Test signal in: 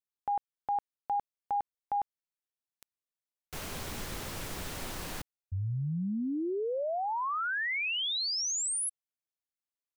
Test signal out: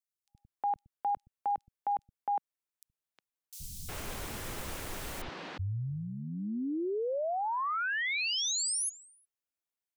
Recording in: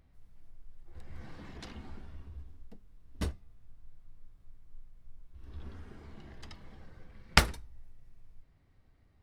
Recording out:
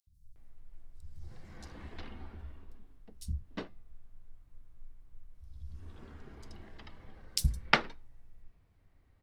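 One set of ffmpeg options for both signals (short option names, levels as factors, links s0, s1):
-filter_complex "[0:a]acrossover=split=170|4500[s0][s1][s2];[s0]adelay=70[s3];[s1]adelay=360[s4];[s3][s4][s2]amix=inputs=3:normalize=0"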